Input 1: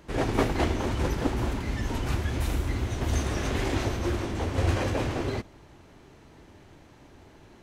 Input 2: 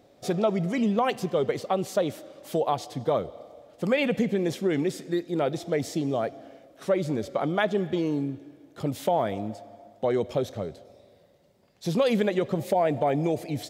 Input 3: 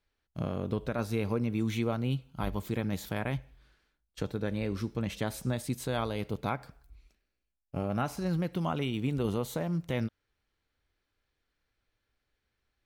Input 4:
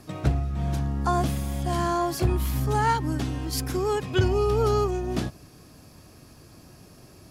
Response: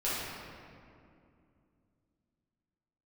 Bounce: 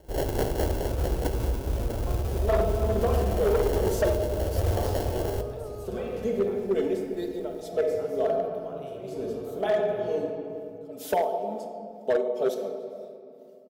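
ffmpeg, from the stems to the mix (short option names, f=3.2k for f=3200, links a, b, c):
-filter_complex "[0:a]acrusher=samples=36:mix=1:aa=0.000001,volume=2.5dB,asplit=2[a][b];[b]volume=-17.5dB[c];[1:a]highpass=f=210:w=0.5412,highpass=f=210:w=1.3066,aecho=1:1:4.6:0.89,tremolo=f=2.1:d=0.93,adelay=2050,volume=2.5dB,asplit=2[d][e];[e]volume=-9.5dB[f];[2:a]volume=-12.5dB,asplit=3[g][h][i];[h]volume=-4dB[j];[3:a]acompressor=threshold=-26dB:ratio=6,adelay=1000,volume=-7.5dB[k];[i]apad=whole_len=694375[l];[d][l]sidechaincompress=threshold=-49dB:ratio=8:attack=16:release=431[m];[4:a]atrim=start_sample=2205[n];[c][f][j]amix=inputs=3:normalize=0[o];[o][n]afir=irnorm=-1:irlink=0[p];[a][m][g][k][p]amix=inputs=5:normalize=0,equalizer=f=125:t=o:w=1:g=-6,equalizer=f=250:t=o:w=1:g=-11,equalizer=f=500:t=o:w=1:g=4,equalizer=f=1k:t=o:w=1:g=-7,equalizer=f=2k:t=o:w=1:g=-11,equalizer=f=4k:t=o:w=1:g=-6,equalizer=f=8k:t=o:w=1:g=-5,asoftclip=type=hard:threshold=-18dB"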